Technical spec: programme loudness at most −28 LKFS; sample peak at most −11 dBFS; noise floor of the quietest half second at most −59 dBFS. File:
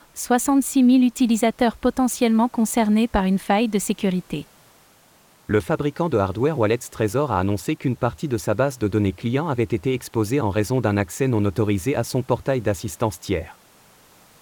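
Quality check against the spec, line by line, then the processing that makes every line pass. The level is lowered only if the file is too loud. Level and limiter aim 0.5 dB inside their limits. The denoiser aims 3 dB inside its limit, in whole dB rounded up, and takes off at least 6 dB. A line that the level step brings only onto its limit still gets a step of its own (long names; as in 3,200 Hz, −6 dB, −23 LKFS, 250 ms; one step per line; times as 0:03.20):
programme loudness −21.5 LKFS: out of spec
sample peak −5.5 dBFS: out of spec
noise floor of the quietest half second −55 dBFS: out of spec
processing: level −7 dB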